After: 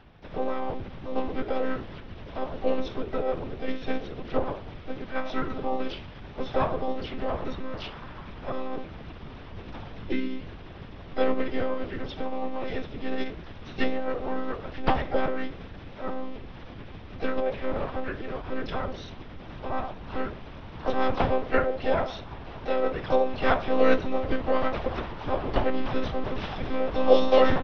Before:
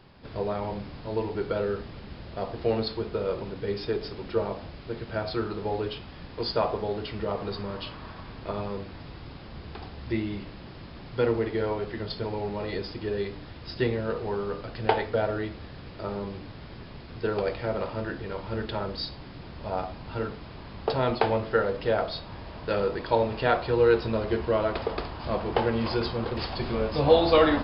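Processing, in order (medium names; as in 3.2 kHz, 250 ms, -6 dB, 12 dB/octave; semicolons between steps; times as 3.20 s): monotone LPC vocoder at 8 kHz 260 Hz; harmony voices -5 st -12 dB, +3 st -13 dB, +7 st -10 dB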